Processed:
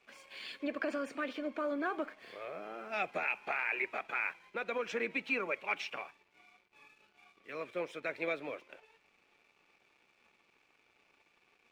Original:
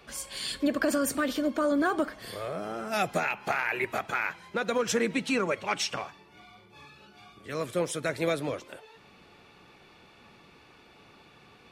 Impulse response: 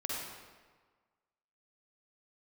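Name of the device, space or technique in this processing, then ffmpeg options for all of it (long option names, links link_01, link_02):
pocket radio on a weak battery: -af "highpass=300,lowpass=3100,aeval=exprs='sgn(val(0))*max(abs(val(0))-0.00119,0)':channel_layout=same,equalizer=frequency=2400:width_type=o:width=0.34:gain=10,volume=-8dB"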